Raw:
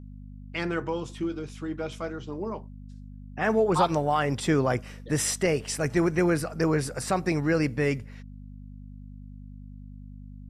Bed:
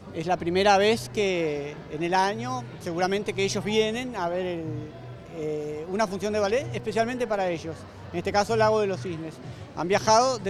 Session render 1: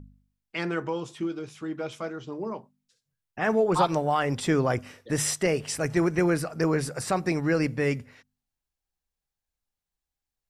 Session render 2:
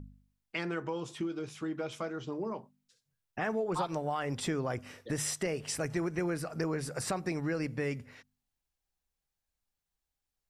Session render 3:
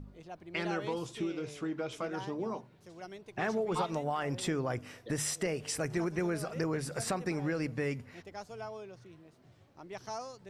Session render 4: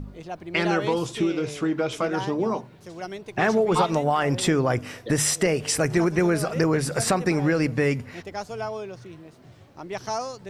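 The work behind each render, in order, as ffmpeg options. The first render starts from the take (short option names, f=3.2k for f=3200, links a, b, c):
-af "bandreject=f=50:t=h:w=4,bandreject=f=100:t=h:w=4,bandreject=f=150:t=h:w=4,bandreject=f=200:t=h:w=4,bandreject=f=250:t=h:w=4"
-af "acompressor=threshold=-33dB:ratio=3"
-filter_complex "[1:a]volume=-21.5dB[a];[0:a][a]amix=inputs=2:normalize=0"
-af "volume=11.5dB"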